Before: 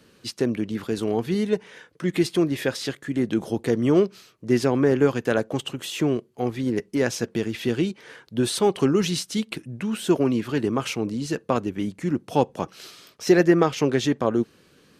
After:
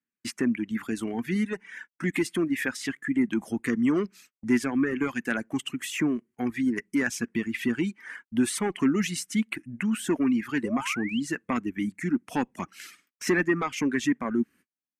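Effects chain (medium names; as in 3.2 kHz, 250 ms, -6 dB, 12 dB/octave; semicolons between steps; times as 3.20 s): Chebyshev shaper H 5 -20 dB, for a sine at -4 dBFS; gate -42 dBFS, range -40 dB; graphic EQ 125/250/500/2000/4000/8000 Hz -7/+10/-12/+12/-10/+5 dB; in parallel at -3 dB: compression, threshold -27 dBFS, peak gain reduction 15.5 dB; on the sum: reverb removal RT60 1.4 s; painted sound rise, 10.63–11.20 s, 450–3300 Hz -29 dBFS; trim -8.5 dB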